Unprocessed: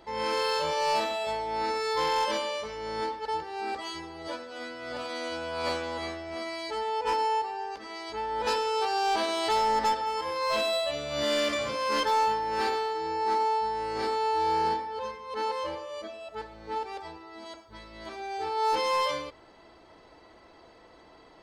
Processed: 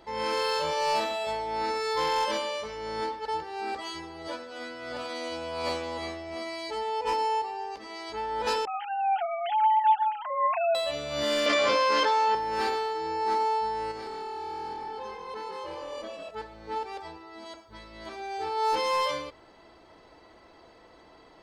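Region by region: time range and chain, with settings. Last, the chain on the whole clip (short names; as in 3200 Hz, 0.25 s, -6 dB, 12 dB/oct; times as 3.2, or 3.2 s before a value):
5.13–7.99 bell 1500 Hz -7.5 dB 0.3 oct + notch 3400 Hz, Q 30
8.65–10.75 sine-wave speech + comb 5.6 ms, depth 62%
11.46–12.35 three-band isolator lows -17 dB, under 260 Hz, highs -22 dB, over 7200 Hz + fast leveller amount 100%
13.91–16.31 compressor 12:1, threshold -34 dBFS + frequency-shifting echo 0.148 s, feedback 36%, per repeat -41 Hz, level -6.5 dB
whole clip: dry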